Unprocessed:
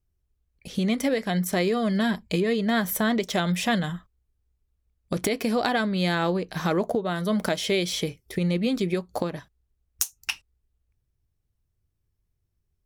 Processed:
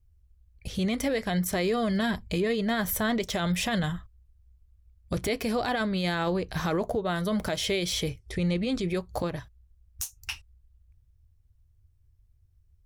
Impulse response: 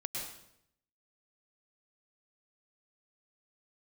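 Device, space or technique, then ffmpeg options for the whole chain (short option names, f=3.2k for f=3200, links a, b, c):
car stereo with a boomy subwoofer: -filter_complex "[0:a]lowshelf=f=130:t=q:w=1.5:g=12,alimiter=limit=-19.5dB:level=0:latency=1:release=14,asettb=1/sr,asplit=3[a][b][c];[a]atrim=end=8.194[d];[b]atrim=start=8.19:end=8.89,asetpts=PTS-STARTPTS,afade=t=in:d=0.004:c=qsin,afade=t=out:st=0.696:d=0.004:c=qsin,lowpass=f=9.6k:w=0.5412,lowpass=f=9.6k:w=1.3066[e];[c]atrim=start=8.886[f];[d][e]acrossfade=d=0.004:c1=hsin:c2=qsin[g];[g][f]acrossfade=d=0.004:c1=qsin:c2=hsin"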